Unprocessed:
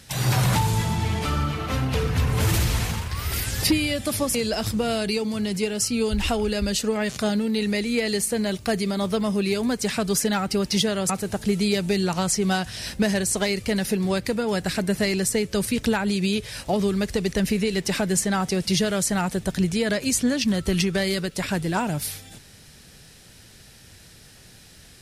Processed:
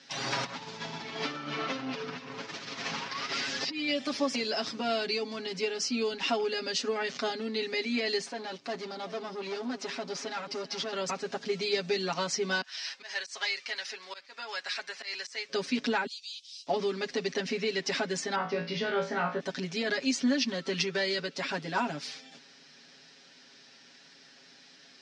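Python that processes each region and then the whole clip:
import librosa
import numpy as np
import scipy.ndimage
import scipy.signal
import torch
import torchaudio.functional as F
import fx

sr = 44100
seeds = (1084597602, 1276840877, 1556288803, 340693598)

y = fx.chain(x, sr, fx.lowpass(hz=7500.0, slope=24),
    fx.over_compress(threshold_db=-27.0, ratio=-1.0), at=(0.44, 3.91))
y = fx.chain(y, sr, fx.tube_stage(drive_db=25.0, bias=0.75),
    fx.echo_single(ms=380, db=-15.5), at=(8.26, 10.93))
y = fx.chain(y, sr, fx.highpass(hz=1100.0, slope=12),
    fx.auto_swell(attack_ms=126.0), at=(12.61, 15.49))
y = fx.chain(y, sr, fx.steep_highpass(hz=3000.0, slope=36),
    fx.differentiator(), at=(16.06, 16.67))
y = fx.chain(y, sr, fx.lowpass(hz=2200.0, slope=12),
    fx.room_flutter(wall_m=3.0, rt60_s=0.32), at=(18.35, 19.4))
y = scipy.signal.sosfilt(scipy.signal.ellip(3, 1.0, 40, [220.0, 5500.0], 'bandpass', fs=sr, output='sos'), y)
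y = fx.peak_eq(y, sr, hz=360.0, db=-3.5, octaves=1.9)
y = y + 0.97 * np.pad(y, (int(7.3 * sr / 1000.0), 0))[:len(y)]
y = y * 10.0 ** (-5.5 / 20.0)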